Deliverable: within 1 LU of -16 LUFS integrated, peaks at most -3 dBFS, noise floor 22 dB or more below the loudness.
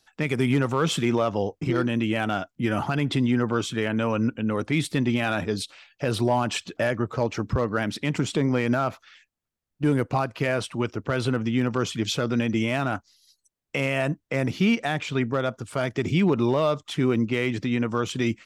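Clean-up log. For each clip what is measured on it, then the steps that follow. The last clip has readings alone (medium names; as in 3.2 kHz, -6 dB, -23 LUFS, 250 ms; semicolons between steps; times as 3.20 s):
clipped samples 0.2%; clipping level -13.5 dBFS; loudness -25.5 LUFS; peak level -13.5 dBFS; loudness target -16.0 LUFS
-> clip repair -13.5 dBFS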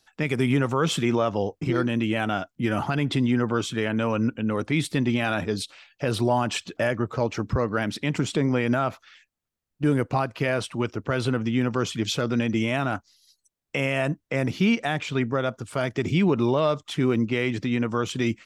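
clipped samples 0.0%; loudness -25.5 LUFS; peak level -11.0 dBFS; loudness target -16.0 LUFS
-> trim +9.5 dB; peak limiter -3 dBFS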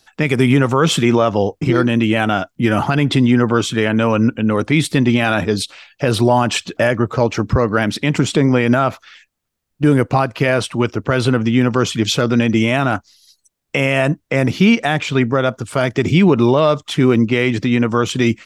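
loudness -16.0 LUFS; peak level -3.0 dBFS; noise floor -71 dBFS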